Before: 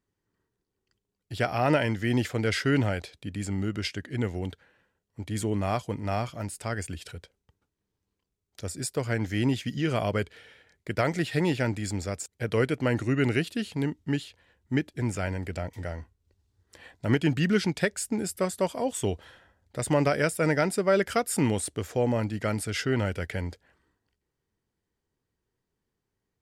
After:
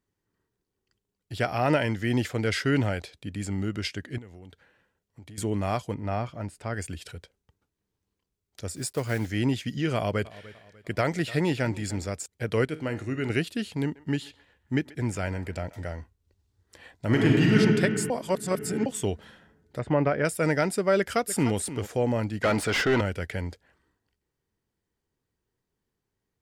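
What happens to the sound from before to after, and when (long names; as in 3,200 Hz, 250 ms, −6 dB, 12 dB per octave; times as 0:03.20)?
0:04.18–0:05.38: downward compressor 5 to 1, threshold −43 dBFS
0:05.94–0:06.74: low-pass filter 2,000 Hz 6 dB per octave
0:08.72–0:09.31: one scale factor per block 5 bits
0:09.95–0:12.07: repeating echo 297 ms, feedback 40%, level −19 dB
0:12.65–0:13.30: tuned comb filter 52 Hz, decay 0.49 s
0:13.82–0:15.91: feedback echo with a band-pass in the loop 134 ms, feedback 50%, band-pass 1,200 Hz, level −16.5 dB
0:17.06–0:17.57: thrown reverb, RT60 2.6 s, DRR −3 dB
0:18.10–0:18.86: reverse
0:19.79–0:20.25: low-pass filter 2,000 Hz
0:20.98–0:21.56: delay throw 300 ms, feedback 15%, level −13 dB
0:22.43–0:23.01: mid-hump overdrive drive 24 dB, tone 1,900 Hz, clips at −13.5 dBFS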